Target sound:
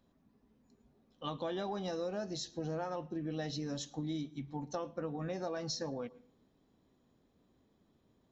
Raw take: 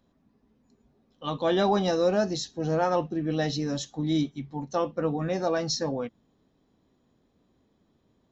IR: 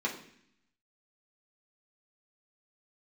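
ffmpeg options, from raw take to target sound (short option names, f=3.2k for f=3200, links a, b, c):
-filter_complex "[0:a]acompressor=threshold=-32dB:ratio=6,asplit=2[a][b];[1:a]atrim=start_sample=2205,adelay=108[c];[b][c]afir=irnorm=-1:irlink=0,volume=-27.5dB[d];[a][d]amix=inputs=2:normalize=0,volume=-3.5dB"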